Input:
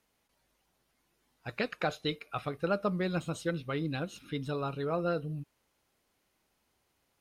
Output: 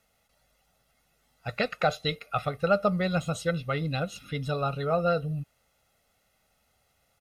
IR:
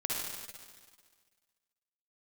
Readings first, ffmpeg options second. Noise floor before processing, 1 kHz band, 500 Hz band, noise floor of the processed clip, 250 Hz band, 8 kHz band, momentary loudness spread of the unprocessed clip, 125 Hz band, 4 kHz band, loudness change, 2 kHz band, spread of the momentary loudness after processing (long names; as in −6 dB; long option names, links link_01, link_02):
−77 dBFS, +7.5 dB, +6.0 dB, −71 dBFS, +3.0 dB, +6.0 dB, 9 LU, +6.0 dB, +5.5 dB, +5.5 dB, +5.5 dB, 10 LU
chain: -af "aecho=1:1:1.5:0.7,volume=4dB"